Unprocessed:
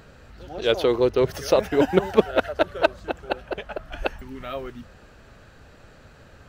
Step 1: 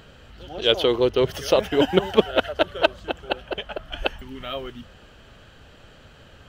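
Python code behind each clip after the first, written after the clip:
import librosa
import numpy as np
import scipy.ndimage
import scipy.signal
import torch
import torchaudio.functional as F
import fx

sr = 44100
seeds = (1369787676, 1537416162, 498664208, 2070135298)

y = fx.peak_eq(x, sr, hz=3100.0, db=12.5, octaves=0.29)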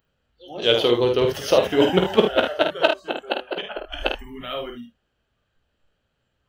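y = fx.noise_reduce_blind(x, sr, reduce_db=26)
y = fx.room_early_taps(y, sr, ms=(17, 50, 76), db=(-9.5, -5.5, -10.0))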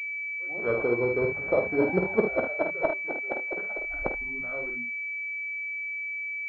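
y = fx.air_absorb(x, sr, metres=110.0)
y = fx.pwm(y, sr, carrier_hz=2300.0)
y = F.gain(torch.from_numpy(y), -6.5).numpy()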